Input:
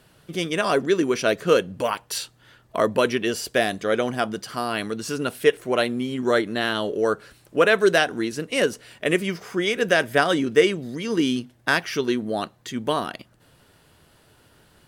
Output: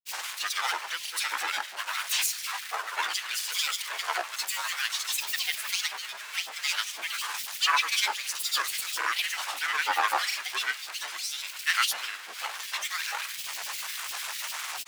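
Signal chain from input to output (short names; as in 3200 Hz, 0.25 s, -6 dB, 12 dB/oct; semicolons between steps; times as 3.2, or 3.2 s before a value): zero-crossing step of -24 dBFS; harmoniser +7 st -6 dB; in parallel at -3 dB: limiter -11 dBFS, peak gain reduction 10 dB; on the sum: HPF 1400 Hz 24 dB/oct; on a send at -9.5 dB: reverb RT60 0.80 s, pre-delay 50 ms; on the sum: grains, pitch spread up and down by 12 st; gain -6.5 dB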